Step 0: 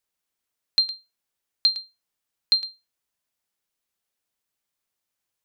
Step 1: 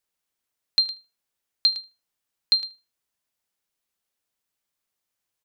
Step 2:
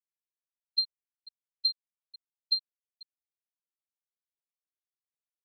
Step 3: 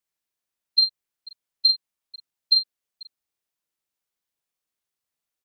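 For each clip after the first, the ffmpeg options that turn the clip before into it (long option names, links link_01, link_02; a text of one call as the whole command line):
ffmpeg -i in.wav -filter_complex "[0:a]asplit=2[link_01][link_02];[link_02]adelay=77,lowpass=frequency=2300:poles=1,volume=-20dB,asplit=2[link_03][link_04];[link_04]adelay=77,lowpass=frequency=2300:poles=1,volume=0.33,asplit=2[link_05][link_06];[link_06]adelay=77,lowpass=frequency=2300:poles=1,volume=0.33[link_07];[link_01][link_03][link_05][link_07]amix=inputs=4:normalize=0" out.wav
ffmpeg -i in.wav -af "aecho=1:1:41|488:0.106|0.282,afftfilt=real='re*gte(hypot(re,im),0.631)':imag='im*gte(hypot(re,im),0.631)':win_size=1024:overlap=0.75,volume=-6.5dB" out.wav
ffmpeg -i in.wav -filter_complex "[0:a]asplit=2[link_01][link_02];[link_02]adelay=42,volume=-6dB[link_03];[link_01][link_03]amix=inputs=2:normalize=0,volume=8.5dB" out.wav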